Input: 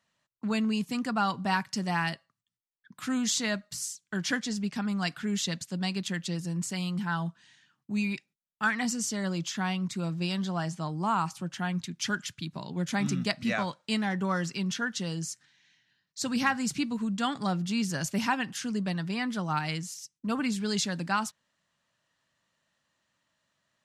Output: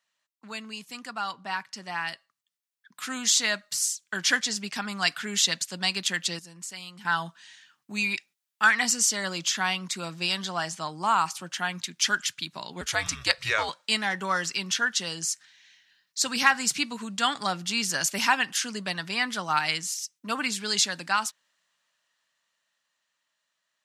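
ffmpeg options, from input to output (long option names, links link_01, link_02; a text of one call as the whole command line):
ffmpeg -i in.wav -filter_complex "[0:a]asettb=1/sr,asplit=3[link_01][link_02][link_03];[link_01]atrim=end=1.334[link_04];[link_02]atrim=start=1.33:end=2.09,asetpts=PTS-STARTPTS,afade=type=in:duration=0.004:curve=qsin,afade=type=out:start_time=0.756:duration=0.004:curve=qsin,aemphasis=mode=reproduction:type=cd[link_05];[link_03]atrim=start=2.086[link_06];[link_04][link_05]acrossfade=duration=0.004:curve1=hsin:curve2=qsin[link_07];[link_07][link_06]acrossfade=duration=0.004:curve1=qsin:curve2=hsin,asettb=1/sr,asplit=3[link_08][link_09][link_10];[link_08]atrim=end=12.814[link_11];[link_09]atrim=start=12.81:end=13.69,asetpts=PTS-STARTPTS,afade=type=in:duration=0.004:curve=qsin,afade=type=out:start_time=0.876:duration=0.004:curve=qsin,afreqshift=-110[link_12];[link_10]atrim=start=13.686[link_13];[link_11][link_12]acrossfade=duration=0.004:curve1=hsin:curve2=qsin[link_14];[link_14][link_13]acrossfade=duration=0.004:curve1=qsin:curve2=hsin,asplit=3[link_15][link_16][link_17];[link_15]atrim=end=6.392[link_18];[link_16]atrim=start=6.388:end=7.052,asetpts=PTS-STARTPTS,volume=-11dB[link_19];[link_17]atrim=start=7.048[link_20];[link_18][link_19]acrossfade=duration=0.004:curve1=hsin:curve2=hsin[link_21];[link_21][link_20]acrossfade=duration=0.004:curve1=hsin:curve2=hsin,highpass=frequency=1400:poles=1,dynaudnorm=framelen=290:gausssize=21:maxgain=10.5dB" out.wav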